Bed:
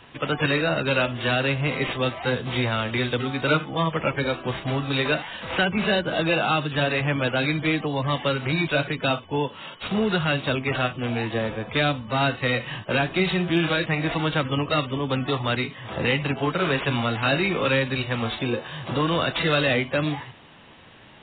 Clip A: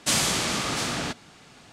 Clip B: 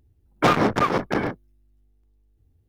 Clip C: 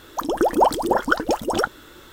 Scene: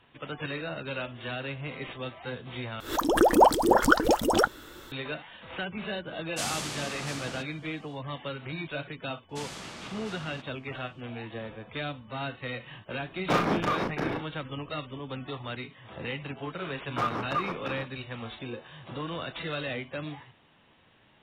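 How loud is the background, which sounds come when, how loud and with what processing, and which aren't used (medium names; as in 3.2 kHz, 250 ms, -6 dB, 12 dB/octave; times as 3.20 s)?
bed -12.5 dB
2.80 s: replace with C -1.5 dB + swell ahead of each attack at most 140 dB/s
6.30 s: add A -10 dB, fades 0.10 s
9.29 s: add A -14.5 dB + low-pass 3.4 kHz 6 dB/octave
12.86 s: add B -9 dB + doubling 37 ms -2.5 dB
16.54 s: add B -16 dB + peaking EQ 1.2 kHz +9 dB 0.62 oct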